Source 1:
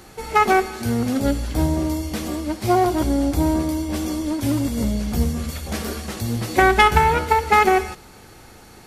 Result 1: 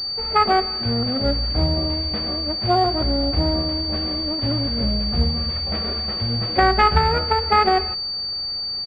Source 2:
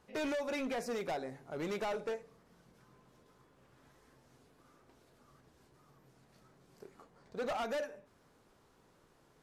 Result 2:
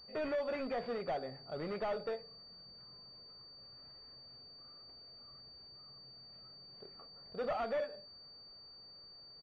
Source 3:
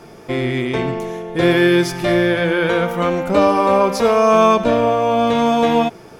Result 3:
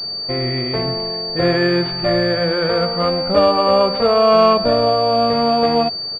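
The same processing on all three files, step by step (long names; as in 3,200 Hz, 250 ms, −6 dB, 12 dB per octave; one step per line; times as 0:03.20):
comb filter 1.6 ms, depth 37%
switching amplifier with a slow clock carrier 4,600 Hz
level −1 dB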